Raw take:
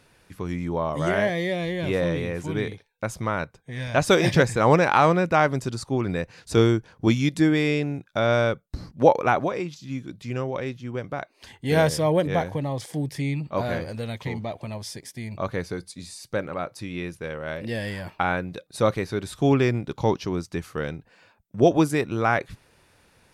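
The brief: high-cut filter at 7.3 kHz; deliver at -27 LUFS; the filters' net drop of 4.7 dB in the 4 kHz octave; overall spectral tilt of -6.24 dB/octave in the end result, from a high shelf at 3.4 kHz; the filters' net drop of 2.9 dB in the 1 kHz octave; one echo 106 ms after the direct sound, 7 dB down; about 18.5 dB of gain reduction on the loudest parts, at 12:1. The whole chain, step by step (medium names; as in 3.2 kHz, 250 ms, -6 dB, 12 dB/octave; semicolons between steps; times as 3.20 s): low-pass 7.3 kHz; peaking EQ 1 kHz -3.5 dB; treble shelf 3.4 kHz -3.5 dB; peaking EQ 4 kHz -3 dB; compression 12:1, threshold -31 dBFS; delay 106 ms -7 dB; trim +9 dB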